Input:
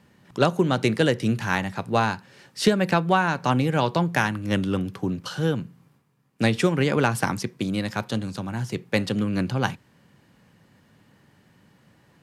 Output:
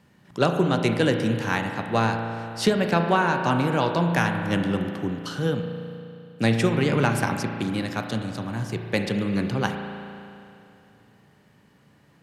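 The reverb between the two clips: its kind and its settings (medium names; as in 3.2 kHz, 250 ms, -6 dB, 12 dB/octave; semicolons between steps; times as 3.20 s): spring tank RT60 2.7 s, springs 35 ms, chirp 40 ms, DRR 4.5 dB; trim -1.5 dB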